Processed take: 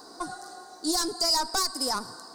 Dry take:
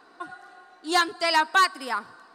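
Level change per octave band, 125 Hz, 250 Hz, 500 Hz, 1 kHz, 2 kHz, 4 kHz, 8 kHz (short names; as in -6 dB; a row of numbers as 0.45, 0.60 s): n/a, +1.5 dB, -3.5 dB, -7.5 dB, -15.0 dB, +1.5 dB, +8.5 dB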